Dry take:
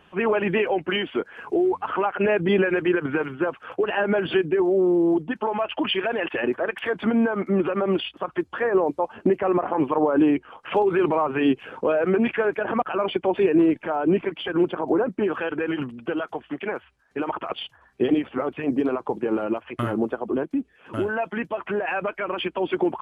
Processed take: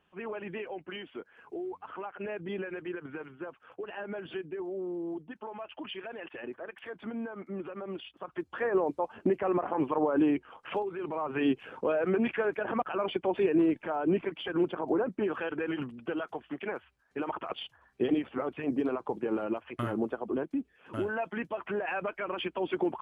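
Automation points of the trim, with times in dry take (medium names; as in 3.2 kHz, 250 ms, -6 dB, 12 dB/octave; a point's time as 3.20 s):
7.98 s -16.5 dB
8.63 s -7 dB
10.69 s -7 dB
10.94 s -18 dB
11.38 s -7 dB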